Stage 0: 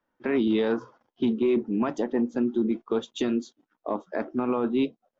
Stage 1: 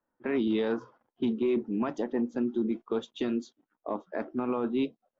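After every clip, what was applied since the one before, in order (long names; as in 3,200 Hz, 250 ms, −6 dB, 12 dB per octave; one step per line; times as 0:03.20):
low-pass that shuts in the quiet parts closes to 1,600 Hz, open at −21 dBFS
level −4 dB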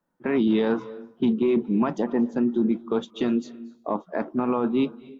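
parametric band 170 Hz +11 dB 0.53 octaves
convolution reverb RT60 0.60 s, pre-delay 222 ms, DRR 19 dB
dynamic equaliser 950 Hz, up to +4 dB, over −45 dBFS, Q 1.5
level +4 dB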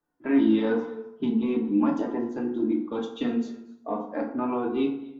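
flanger 0.42 Hz, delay 2.5 ms, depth 2.5 ms, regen +26%
feedback delay network reverb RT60 0.69 s, low-frequency decay 1×, high-frequency decay 0.6×, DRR 0 dB
level −2 dB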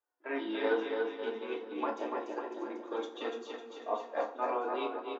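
high-pass filter 450 Hz 24 dB per octave
bouncing-ball delay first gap 290 ms, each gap 0.9×, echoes 5
expander for the loud parts 1.5 to 1, over −39 dBFS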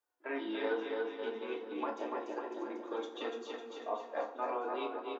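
downward compressor 1.5 to 1, threshold −41 dBFS, peak gain reduction 6 dB
level +1 dB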